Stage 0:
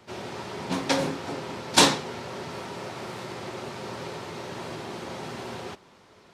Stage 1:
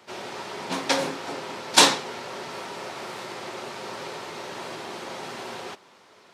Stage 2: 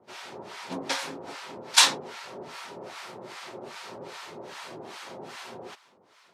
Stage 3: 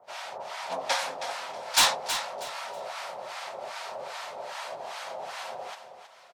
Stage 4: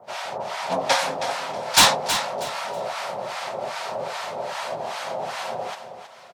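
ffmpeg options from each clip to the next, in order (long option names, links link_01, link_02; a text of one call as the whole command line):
ffmpeg -i in.wav -af "highpass=frequency=470:poles=1,volume=3dB" out.wav
ffmpeg -i in.wav -filter_complex "[0:a]acrossover=split=860[link_01][link_02];[link_01]aeval=exprs='val(0)*(1-1/2+1/2*cos(2*PI*2.5*n/s))':channel_layout=same[link_03];[link_02]aeval=exprs='val(0)*(1-1/2-1/2*cos(2*PI*2.5*n/s))':channel_layout=same[link_04];[link_03][link_04]amix=inputs=2:normalize=0,volume=-1dB" out.wav
ffmpeg -i in.wav -filter_complex "[0:a]lowshelf=frequency=460:width_type=q:width=3:gain=-11,asoftclip=type=tanh:threshold=-17dB,asplit=2[link_01][link_02];[link_02]aecho=0:1:320|640|960:0.316|0.0854|0.0231[link_03];[link_01][link_03]amix=inputs=2:normalize=0,volume=2dB" out.wav
ffmpeg -i in.wav -af "equalizer=frequency=150:width=0.47:gain=11.5,volume=6dB" out.wav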